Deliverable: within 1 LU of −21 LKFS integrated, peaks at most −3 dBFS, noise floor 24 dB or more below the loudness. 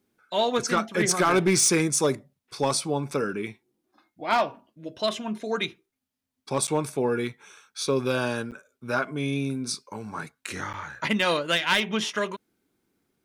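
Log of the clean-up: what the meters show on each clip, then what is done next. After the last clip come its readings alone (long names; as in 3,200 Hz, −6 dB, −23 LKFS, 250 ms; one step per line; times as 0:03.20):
share of clipped samples 0.2%; peaks flattened at −14.5 dBFS; number of dropouts 3; longest dropout 8.2 ms; integrated loudness −26.0 LKFS; sample peak −14.5 dBFS; target loudness −21.0 LKFS
→ clipped peaks rebuilt −14.5 dBFS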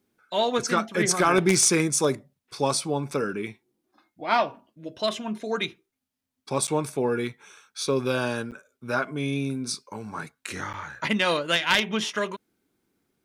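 share of clipped samples 0.0%; number of dropouts 3; longest dropout 8.2 ms
→ repair the gap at 0:06.67/0:08.51/0:10.73, 8.2 ms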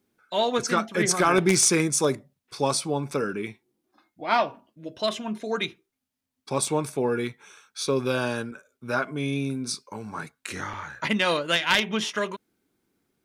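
number of dropouts 0; integrated loudness −25.5 LKFS; sample peak −5.5 dBFS; target loudness −21.0 LKFS
→ level +4.5 dB
brickwall limiter −3 dBFS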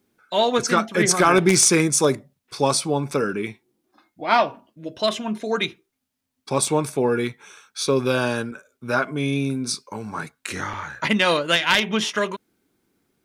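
integrated loudness −21.5 LKFS; sample peak −3.0 dBFS; background noise floor −78 dBFS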